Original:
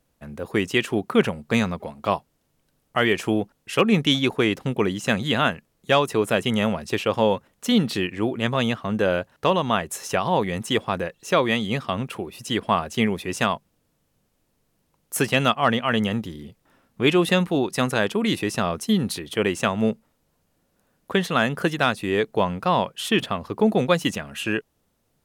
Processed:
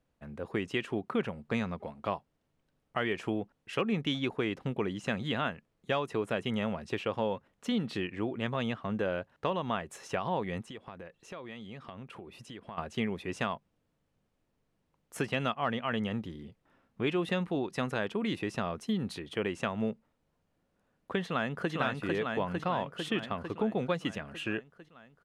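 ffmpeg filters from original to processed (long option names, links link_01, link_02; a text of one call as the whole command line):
ffmpeg -i in.wav -filter_complex "[0:a]asplit=3[link_01][link_02][link_03];[link_01]afade=type=out:start_time=10.6:duration=0.02[link_04];[link_02]acompressor=threshold=-36dB:ratio=4:attack=3.2:release=140:knee=1:detection=peak,afade=type=in:start_time=10.6:duration=0.02,afade=type=out:start_time=12.77:duration=0.02[link_05];[link_03]afade=type=in:start_time=12.77:duration=0.02[link_06];[link_04][link_05][link_06]amix=inputs=3:normalize=0,asplit=2[link_07][link_08];[link_08]afade=type=in:start_time=21.24:duration=0.01,afade=type=out:start_time=21.73:duration=0.01,aecho=0:1:450|900|1350|1800|2250|2700|3150|3600|4050|4500|4950:0.841395|0.546907|0.355489|0.231068|0.150194|0.0976263|0.0634571|0.0412471|0.0268106|0.0174269|0.0113275[link_09];[link_07][link_09]amix=inputs=2:normalize=0,lowpass=9800,bass=frequency=250:gain=0,treble=frequency=4000:gain=-9,acompressor=threshold=-23dB:ratio=2,volume=-7dB" out.wav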